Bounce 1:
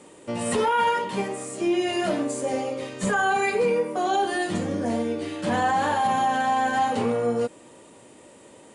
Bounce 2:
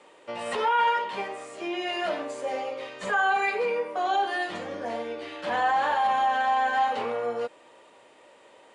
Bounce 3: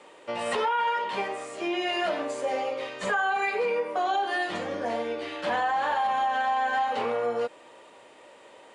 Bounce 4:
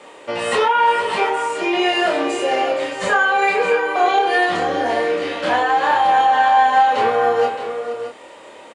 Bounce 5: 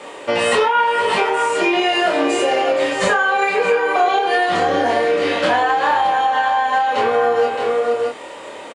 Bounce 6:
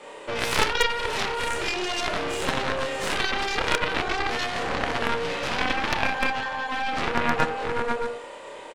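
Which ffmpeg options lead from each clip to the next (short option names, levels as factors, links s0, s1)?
-filter_complex "[0:a]acrossover=split=480 4700:gain=0.126 1 0.126[s0][s1][s2];[s0][s1][s2]amix=inputs=3:normalize=0"
-af "acompressor=threshold=0.0501:ratio=6,volume=1.41"
-filter_complex "[0:a]asplit=2[s0][s1];[s1]adelay=28,volume=0.75[s2];[s0][s2]amix=inputs=2:normalize=0,asplit=2[s3][s4];[s4]aecho=0:1:469|619:0.237|0.316[s5];[s3][s5]amix=inputs=2:normalize=0,volume=2.51"
-filter_complex "[0:a]acompressor=threshold=0.1:ratio=6,asplit=2[s0][s1];[s1]adelay=21,volume=0.266[s2];[s0][s2]amix=inputs=2:normalize=0,volume=2.11"
-af "aecho=1:1:30|63|99.3|139.2|183.2:0.631|0.398|0.251|0.158|0.1,aeval=exprs='0.891*(cos(1*acos(clip(val(0)/0.891,-1,1)))-cos(1*PI/2))+0.2*(cos(2*acos(clip(val(0)/0.891,-1,1)))-cos(2*PI/2))+0.398*(cos(3*acos(clip(val(0)/0.891,-1,1)))-cos(3*PI/2))':c=same,aeval=exprs='0.596*(abs(mod(val(0)/0.596+3,4)-2)-1)':c=same"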